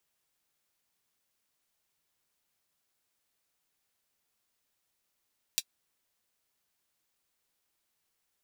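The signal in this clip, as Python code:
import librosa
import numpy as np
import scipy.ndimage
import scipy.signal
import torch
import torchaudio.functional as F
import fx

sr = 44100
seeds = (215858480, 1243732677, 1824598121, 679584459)

y = fx.drum_hat(sr, length_s=0.24, from_hz=3500.0, decay_s=0.06)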